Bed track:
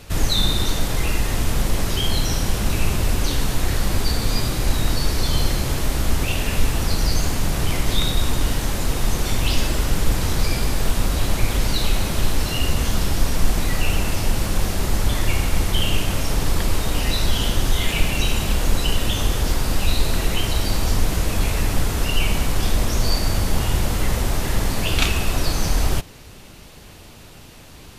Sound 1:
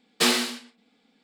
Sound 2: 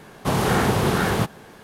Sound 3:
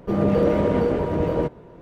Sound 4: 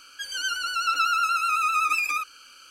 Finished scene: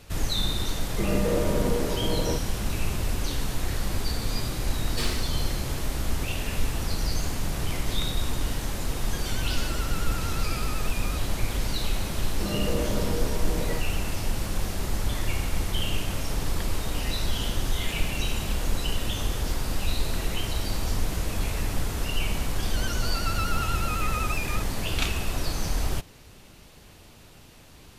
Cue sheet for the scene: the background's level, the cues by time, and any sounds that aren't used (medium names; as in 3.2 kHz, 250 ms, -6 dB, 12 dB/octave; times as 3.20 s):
bed track -7.5 dB
0.90 s: add 3 -7 dB
4.77 s: add 1 -14.5 dB + waveshaping leveller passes 1
8.94 s: add 4 -5.5 dB + compression, threshold -32 dBFS
12.32 s: add 3 -11 dB + tone controls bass +1 dB, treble +14 dB
22.39 s: add 4 -9 dB
not used: 2